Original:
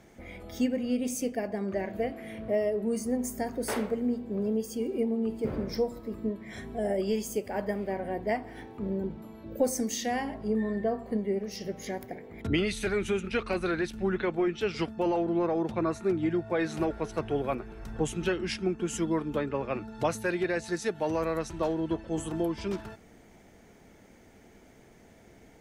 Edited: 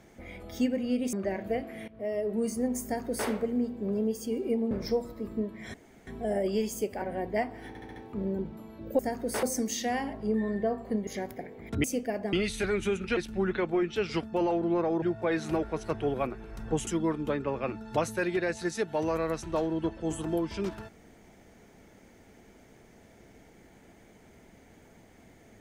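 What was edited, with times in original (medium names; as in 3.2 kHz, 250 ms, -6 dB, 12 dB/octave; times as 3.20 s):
1.13–1.62 s: move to 12.56 s
2.37–2.81 s: fade in linear, from -19 dB
3.33–3.77 s: copy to 9.64 s
5.20–5.58 s: delete
6.61 s: insert room tone 0.33 s
7.56–7.95 s: delete
8.61 s: stutter 0.07 s, 5 plays
11.28–11.79 s: delete
13.40–13.82 s: delete
15.67–16.30 s: delete
18.15–18.94 s: delete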